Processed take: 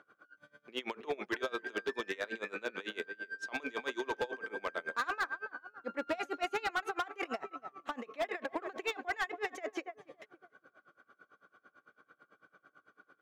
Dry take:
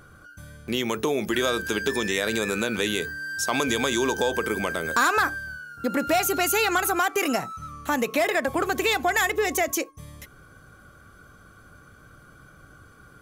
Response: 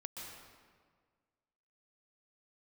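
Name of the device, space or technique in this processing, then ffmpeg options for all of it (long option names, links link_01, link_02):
helicopter radio: -filter_complex "[0:a]highpass=frequency=270:poles=1,asettb=1/sr,asplit=3[link_01][link_02][link_03];[link_01]atrim=end=0.784[link_04];[link_02]atrim=start=0.78:end=1.37,asetpts=PTS-STARTPTS,afade=type=in:duration=0.004:curve=qsin,afade=type=out:start_time=0.586:duration=0.004:curve=qsin,equalizer=frequency=1700:width_type=o:width=2.9:gain=4[link_05];[link_03]atrim=start=1.366[link_06];[link_04][link_05]acrossfade=duration=0.004:curve1=hsin:curve2=qsin[link_07];[link_07][link_06]acrossfade=duration=0.004:curve1=qsin:curve2=hsin,highpass=300,lowpass=2800,asplit=2[link_08][link_09];[link_09]adelay=281,lowpass=frequency=1400:poles=1,volume=-11.5dB,asplit=2[link_10][link_11];[link_11]adelay=281,lowpass=frequency=1400:poles=1,volume=0.42,asplit=2[link_12][link_13];[link_13]adelay=281,lowpass=frequency=1400:poles=1,volume=0.42,asplit=2[link_14][link_15];[link_15]adelay=281,lowpass=frequency=1400:poles=1,volume=0.42[link_16];[link_08][link_10][link_12][link_14][link_16]amix=inputs=5:normalize=0,aeval=exprs='val(0)*pow(10,-25*(0.5-0.5*cos(2*PI*9*n/s))/20)':channel_layout=same,asoftclip=type=hard:threshold=-23dB,volume=-4.5dB"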